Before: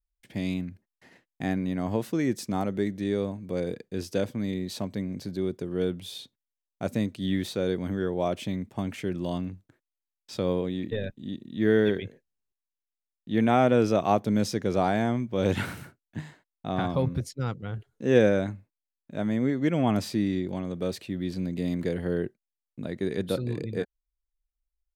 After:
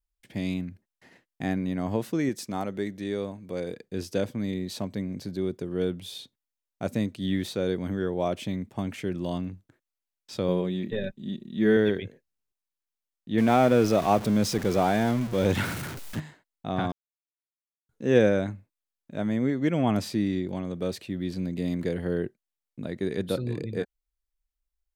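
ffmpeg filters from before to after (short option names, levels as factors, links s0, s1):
-filter_complex "[0:a]asettb=1/sr,asplit=3[s0][s1][s2];[s0]atrim=end=2.294[s3];[s1]atrim=start=2.29:end=3.82,asetpts=PTS-STARTPTS,afade=t=in:d=0.004:c=qsin,afade=t=out:st=1.526:d=0.004:c=qsin,lowshelf=f=350:g=-6[s4];[s2]atrim=start=3.816[s5];[s3][s4]acrossfade=d=0.004:c1=hsin:c2=qsin[s6];[s6][s5]acrossfade=d=0.004:c1=qsin:c2=hsin,asettb=1/sr,asplit=3[s7][s8][s9];[s7]atrim=end=10.484[s10];[s8]atrim=start=10.48:end=11.77,asetpts=PTS-STARTPTS,afade=t=in:d=0.004:c=qsin,afade=t=out:st=1.286:d=0.004:c=qsin,aecho=1:1:5.2:0.56,atrim=end_sample=56889[s11];[s9]atrim=start=11.766[s12];[s10][s11]acrossfade=d=0.004:c1=hsin:c2=qsin[s13];[s13][s12]acrossfade=d=0.004:c1=qsin:c2=hsin,asettb=1/sr,asplit=3[s14][s15][s16];[s14]atrim=end=13.384[s17];[s15]atrim=start=13.38:end=16.2,asetpts=PTS-STARTPTS,afade=t=in:d=0.004:c=qsin,afade=t=out:st=2.816:d=0.004:c=qsin,aeval=exprs='val(0)+0.5*0.0266*sgn(val(0))':c=same[s18];[s16]atrim=start=16.196[s19];[s17][s18]acrossfade=d=0.004:c1=hsin:c2=qsin[s20];[s20][s19]acrossfade=d=0.004:c1=qsin:c2=hsin,asplit=3[s21][s22][s23];[s21]atrim=end=16.92,asetpts=PTS-STARTPTS,afade=t=out:st=16.916:d=0.004:c=hsin[s24];[s22]atrim=start=16.92:end=17.89,asetpts=PTS-STARTPTS,volume=0[s25];[s23]atrim=start=17.89,asetpts=PTS-STARTPTS,afade=t=in:d=0.004:c=hsin[s26];[s24][s25][s26]concat=n=3:v=0:a=1"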